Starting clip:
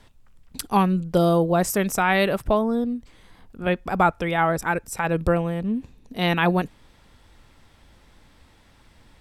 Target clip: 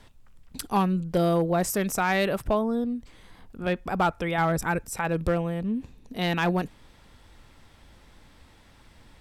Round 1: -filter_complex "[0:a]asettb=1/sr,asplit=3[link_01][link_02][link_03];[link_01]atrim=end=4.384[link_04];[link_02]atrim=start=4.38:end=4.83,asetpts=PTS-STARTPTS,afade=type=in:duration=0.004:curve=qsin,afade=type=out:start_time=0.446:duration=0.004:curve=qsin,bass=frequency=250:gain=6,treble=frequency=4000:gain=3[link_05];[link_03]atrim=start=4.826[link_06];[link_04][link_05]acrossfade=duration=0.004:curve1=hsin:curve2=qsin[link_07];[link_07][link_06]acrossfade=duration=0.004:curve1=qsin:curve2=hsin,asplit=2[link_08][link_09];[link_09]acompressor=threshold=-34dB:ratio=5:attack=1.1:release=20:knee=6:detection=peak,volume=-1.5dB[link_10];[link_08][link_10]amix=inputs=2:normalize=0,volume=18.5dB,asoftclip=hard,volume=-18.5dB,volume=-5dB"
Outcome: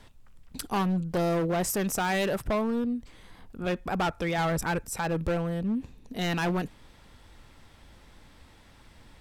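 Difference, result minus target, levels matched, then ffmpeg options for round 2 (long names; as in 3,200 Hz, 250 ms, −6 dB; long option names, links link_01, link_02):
gain into a clipping stage and back: distortion +13 dB
-filter_complex "[0:a]asettb=1/sr,asplit=3[link_01][link_02][link_03];[link_01]atrim=end=4.384[link_04];[link_02]atrim=start=4.38:end=4.83,asetpts=PTS-STARTPTS,afade=type=in:duration=0.004:curve=qsin,afade=type=out:start_time=0.446:duration=0.004:curve=qsin,bass=frequency=250:gain=6,treble=frequency=4000:gain=3[link_05];[link_03]atrim=start=4.826[link_06];[link_04][link_05]acrossfade=duration=0.004:curve1=hsin:curve2=qsin[link_07];[link_07][link_06]acrossfade=duration=0.004:curve1=qsin:curve2=hsin,asplit=2[link_08][link_09];[link_09]acompressor=threshold=-34dB:ratio=5:attack=1.1:release=20:knee=6:detection=peak,volume=-1.5dB[link_10];[link_08][link_10]amix=inputs=2:normalize=0,volume=11dB,asoftclip=hard,volume=-11dB,volume=-5dB"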